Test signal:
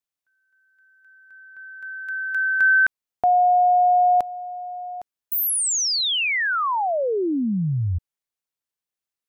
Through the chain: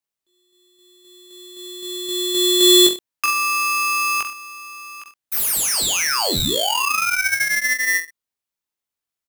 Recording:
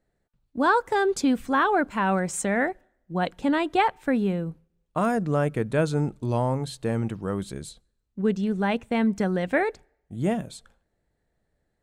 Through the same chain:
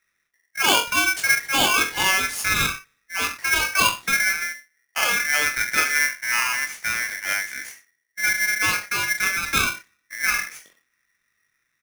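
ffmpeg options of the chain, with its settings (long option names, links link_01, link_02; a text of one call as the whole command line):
ffmpeg -i in.wav -af "aecho=1:1:20|42|66.2|92.82|122.1:0.631|0.398|0.251|0.158|0.1,aeval=exprs='val(0)*sgn(sin(2*PI*1900*n/s))':channel_layout=same" out.wav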